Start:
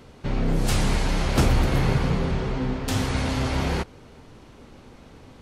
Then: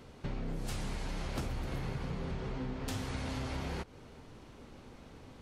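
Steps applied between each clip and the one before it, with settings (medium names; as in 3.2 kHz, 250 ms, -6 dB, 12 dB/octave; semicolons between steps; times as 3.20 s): compression 6:1, threshold -29 dBFS, peak gain reduction 14 dB; trim -5.5 dB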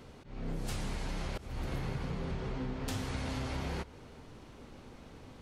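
slow attack 238 ms; reverberation RT60 1.0 s, pre-delay 105 ms, DRR 21.5 dB; trim +1 dB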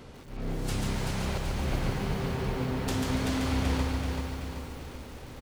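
feedback delay 383 ms, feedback 51%, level -4.5 dB; bit-crushed delay 142 ms, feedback 35%, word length 9-bit, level -3.5 dB; trim +4.5 dB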